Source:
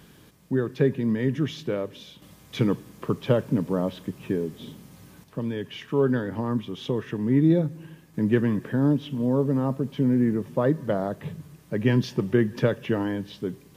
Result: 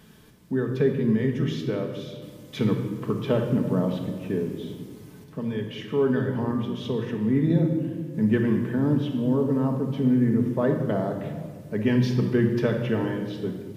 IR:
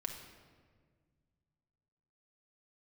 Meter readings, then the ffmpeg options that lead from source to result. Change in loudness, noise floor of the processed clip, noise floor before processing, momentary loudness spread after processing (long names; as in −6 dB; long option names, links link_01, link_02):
+0.5 dB, −46 dBFS, −53 dBFS, 11 LU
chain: -filter_complex "[1:a]atrim=start_sample=2205[link_01];[0:a][link_01]afir=irnorm=-1:irlink=0"